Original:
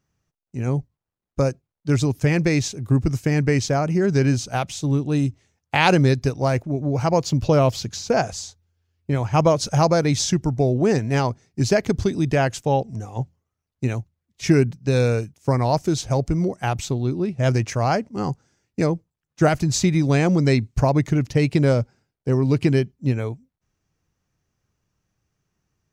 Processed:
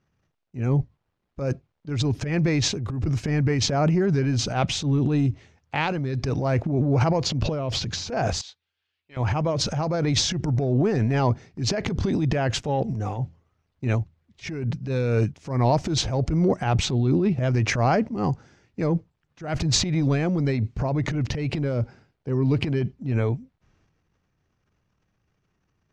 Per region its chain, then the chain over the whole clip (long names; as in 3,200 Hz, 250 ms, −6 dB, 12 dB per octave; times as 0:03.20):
0:08.41–0:09.17: de-essing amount 85% + resonant band-pass 6,800 Hz, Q 0.7 + high shelf with overshoot 4,500 Hz −8.5 dB, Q 1.5
whole clip: compressor whose output falls as the input rises −20 dBFS, ratio −0.5; low-pass filter 3,800 Hz 12 dB per octave; transient designer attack −9 dB, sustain +9 dB